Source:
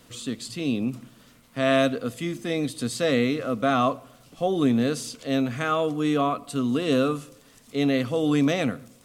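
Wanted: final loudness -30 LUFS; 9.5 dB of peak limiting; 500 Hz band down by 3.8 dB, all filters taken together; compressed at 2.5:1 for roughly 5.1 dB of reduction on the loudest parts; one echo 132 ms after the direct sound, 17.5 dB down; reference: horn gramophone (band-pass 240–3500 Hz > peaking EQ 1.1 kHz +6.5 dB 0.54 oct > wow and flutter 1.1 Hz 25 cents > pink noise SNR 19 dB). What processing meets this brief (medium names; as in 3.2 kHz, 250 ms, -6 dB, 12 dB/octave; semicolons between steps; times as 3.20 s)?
peaking EQ 500 Hz -5 dB; compression 2.5:1, threshold -26 dBFS; peak limiter -24 dBFS; band-pass 240–3500 Hz; peaking EQ 1.1 kHz +6.5 dB 0.54 oct; delay 132 ms -17.5 dB; wow and flutter 1.1 Hz 25 cents; pink noise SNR 19 dB; trim +5 dB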